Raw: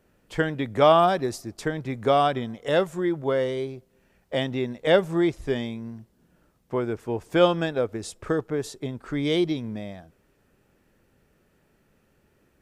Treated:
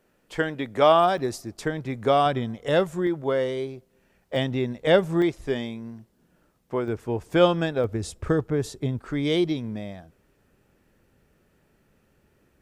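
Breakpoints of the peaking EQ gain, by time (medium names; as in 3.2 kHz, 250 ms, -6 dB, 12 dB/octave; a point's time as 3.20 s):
peaking EQ 61 Hz 2.6 oct
-10 dB
from 1.18 s 0 dB
from 2.26 s +7 dB
from 3.07 s -2.5 dB
from 4.36 s +6.5 dB
from 5.22 s -4 dB
from 6.88 s +5 dB
from 7.84 s +13.5 dB
from 8.99 s +2 dB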